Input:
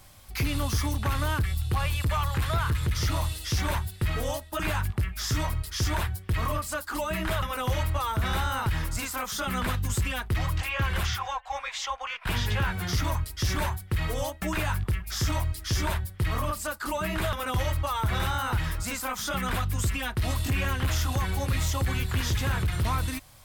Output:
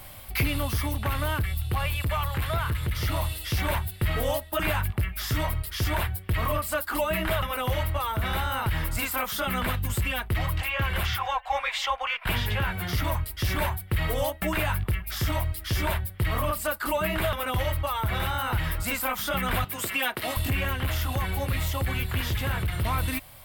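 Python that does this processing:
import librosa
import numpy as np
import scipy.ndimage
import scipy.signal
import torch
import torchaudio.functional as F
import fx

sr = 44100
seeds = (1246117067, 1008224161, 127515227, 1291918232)

y = fx.highpass(x, sr, hz=310.0, slope=12, at=(19.64, 20.37))
y = fx.notch(y, sr, hz=2500.0, q=17.0)
y = fx.rider(y, sr, range_db=10, speed_s=0.5)
y = fx.graphic_eq_15(y, sr, hz=(630, 2500, 6300, 16000), db=(4, 6, -9, 9))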